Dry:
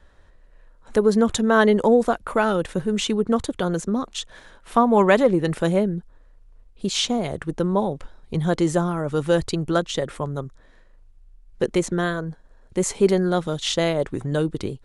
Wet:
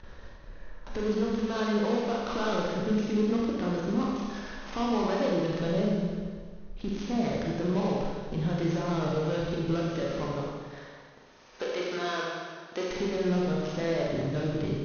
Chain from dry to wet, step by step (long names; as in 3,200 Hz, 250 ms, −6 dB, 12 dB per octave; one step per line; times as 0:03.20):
gap after every zero crossing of 0.15 ms
noise gate with hold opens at −43 dBFS
0:10.39–0:12.88: high-pass filter 520 Hz 12 dB per octave
downward compressor, threshold −28 dBFS, peak gain reduction 16 dB
brickwall limiter −23.5 dBFS, peak gain reduction 8.5 dB
upward compression, threshold −39 dBFS
linear-phase brick-wall low-pass 6,500 Hz
four-comb reverb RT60 1.7 s, combs from 30 ms, DRR −4 dB